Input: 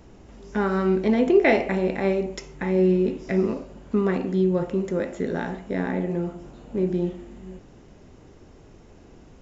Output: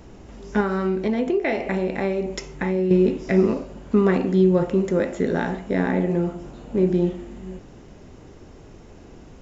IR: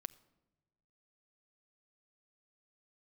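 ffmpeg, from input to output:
-filter_complex "[0:a]asettb=1/sr,asplit=3[link_01][link_02][link_03];[link_01]atrim=end=0.604[link_04];[link_02]atrim=start=0.6:end=2.91,asetpts=PTS-STARTPTS,afade=type=in:duration=0.004:curve=qsin,afade=type=out:start_time=2.306:duration=0.004:curve=qsin,acompressor=threshold=-25dB:ratio=4[link_05];[link_03]atrim=start=2.906[link_06];[link_04][link_05]acrossfade=duration=0.004:curve1=hsin:curve2=qsin[link_07];[link_07][link_06]acrossfade=duration=0.004:curve1=qsin:curve2=hsin,volume=4.5dB"

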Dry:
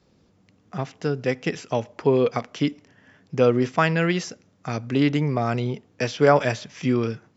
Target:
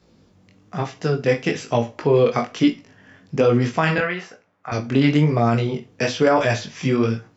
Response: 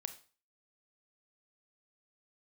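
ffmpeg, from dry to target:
-filter_complex "[0:a]asettb=1/sr,asplit=3[link_01][link_02][link_03];[link_01]atrim=end=3.984[link_04];[link_02]atrim=start=3.98:end=4.72,asetpts=PTS-STARTPTS,afade=type=in:duration=0.004:curve=qsin,afade=type=out:start_time=0.736:duration=0.004:curve=qsin,acrossover=split=560 2400:gain=0.158 1 0.1[link_05][link_06][link_07];[link_05][link_06][link_07]amix=inputs=3:normalize=0[link_08];[link_03]atrim=start=4.716[link_09];[link_04][link_08]acrossfade=duration=0.004:curve1=hsin:curve2=qsin[link_10];[link_10][link_09]acrossfade=duration=0.004:curve1=qsin:curve2=hsin[link_11];[1:a]atrim=start_sample=2205,asetrate=66150,aresample=44100[link_12];[link_11][link_12]afir=irnorm=-1:irlink=0,flanger=delay=17:depth=5.1:speed=1.1,alimiter=level_in=20dB:limit=-1dB:release=50:level=0:latency=1,volume=-6dB"

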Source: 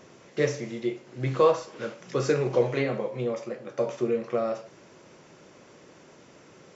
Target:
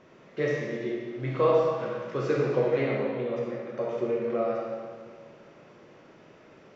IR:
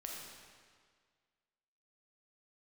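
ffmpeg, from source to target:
-filter_complex "[0:a]lowpass=3300[link_01];[1:a]atrim=start_sample=2205[link_02];[link_01][link_02]afir=irnorm=-1:irlink=0,volume=1.5dB"

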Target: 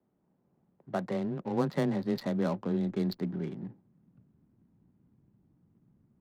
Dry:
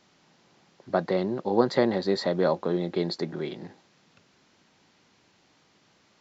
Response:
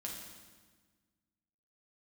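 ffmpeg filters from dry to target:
-af "asubboost=boost=8.5:cutoff=180,adynamicsmooth=sensitivity=6:basefreq=520,afreqshift=16,volume=-7dB"

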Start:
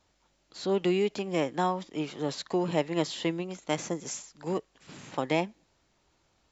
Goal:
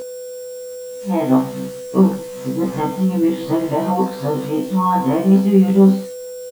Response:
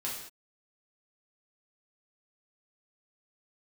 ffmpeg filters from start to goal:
-filter_complex "[0:a]areverse,aecho=1:1:20|42:0.282|0.282,dynaudnorm=framelen=280:gausssize=9:maxgain=12dB,bandreject=frequency=60:width_type=h:width=6,bandreject=frequency=120:width_type=h:width=6,bandreject=frequency=180:width_type=h:width=6,bandreject=frequency=240:width_type=h:width=6,bandreject=frequency=300:width_type=h:width=6,asplit=2[link_01][link_02];[1:a]atrim=start_sample=2205,afade=type=out:start_time=0.22:duration=0.01,atrim=end_sample=10143[link_03];[link_02][link_03]afir=irnorm=-1:irlink=0,volume=-6dB[link_04];[link_01][link_04]amix=inputs=2:normalize=0,acrossover=split=2600[link_05][link_06];[link_06]acompressor=threshold=-37dB:ratio=4:attack=1:release=60[link_07];[link_05][link_07]amix=inputs=2:normalize=0,asubboost=boost=5:cutoff=200,aeval=exprs='val(0)+0.0794*sin(2*PI*500*n/s)':channel_layout=same,alimiter=limit=-7.5dB:level=0:latency=1:release=107,equalizer=frequency=250:width_type=o:width=0.67:gain=10,equalizer=frequency=1000:width_type=o:width=0.67:gain=6,equalizer=frequency=2500:width_type=o:width=0.67:gain=-9,equalizer=frequency=6300:width_type=o:width=0.67:gain=-12,acrusher=bits=5:mix=0:aa=0.000001,afftfilt=real='re*1.73*eq(mod(b,3),0)':imag='im*1.73*eq(mod(b,3),0)':win_size=2048:overlap=0.75"

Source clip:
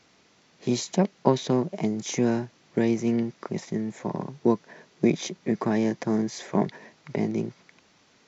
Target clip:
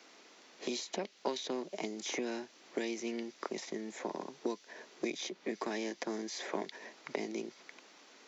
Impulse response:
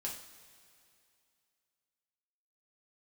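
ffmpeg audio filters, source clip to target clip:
-filter_complex "[0:a]acrossover=split=2500|5200[link_01][link_02][link_03];[link_01]acompressor=threshold=-37dB:ratio=4[link_04];[link_02]acompressor=threshold=-45dB:ratio=4[link_05];[link_03]acompressor=threshold=-57dB:ratio=4[link_06];[link_04][link_05][link_06]amix=inputs=3:normalize=0,highpass=frequency=270:width=0.5412,highpass=frequency=270:width=1.3066,volume=2.5dB"

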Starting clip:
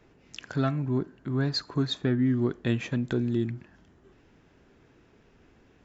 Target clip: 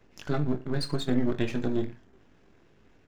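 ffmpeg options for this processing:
ffmpeg -i in.wav -af "aeval=exprs='if(lt(val(0),0),0.251*val(0),val(0))':channel_layout=same,aecho=1:1:20|48|87.2|142.1|218.9:0.631|0.398|0.251|0.158|0.1,atempo=1.9" out.wav

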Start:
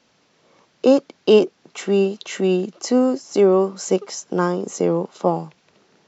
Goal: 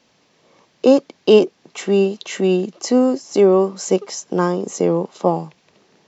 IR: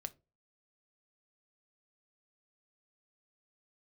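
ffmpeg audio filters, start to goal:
-af "equalizer=frequency=1400:width_type=o:width=0.2:gain=-6,volume=2dB"

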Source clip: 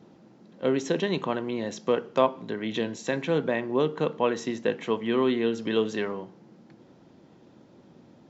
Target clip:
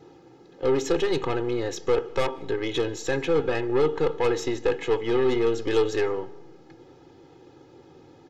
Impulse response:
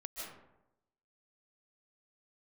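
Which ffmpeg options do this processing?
-filter_complex "[0:a]aeval=exprs='(tanh(15.8*val(0)+0.45)-tanh(0.45))/15.8':channel_layout=same,aecho=1:1:2.4:0.91,asplit=2[link_01][link_02];[1:a]atrim=start_sample=2205[link_03];[link_02][link_03]afir=irnorm=-1:irlink=0,volume=-20.5dB[link_04];[link_01][link_04]amix=inputs=2:normalize=0,volume=3.5dB"

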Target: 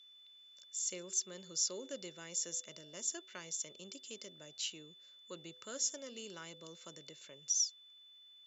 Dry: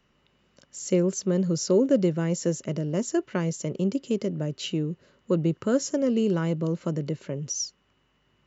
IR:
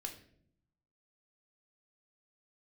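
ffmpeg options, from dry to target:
-af "aeval=exprs='val(0)+0.00282*sin(2*PI*3500*n/s)':channel_layout=same,aderivative,bandreject=frequency=125.8:width_type=h:width=4,bandreject=frequency=251.6:width_type=h:width=4,bandreject=frequency=377.4:width_type=h:width=4,bandreject=frequency=503.2:width_type=h:width=4,bandreject=frequency=629:width_type=h:width=4,bandreject=frequency=754.8:width_type=h:width=4,bandreject=frequency=880.6:width_type=h:width=4"

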